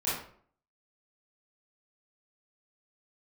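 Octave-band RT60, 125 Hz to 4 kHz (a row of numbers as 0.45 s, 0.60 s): 0.55 s, 0.60 s, 0.60 s, 0.50 s, 0.45 s, 0.35 s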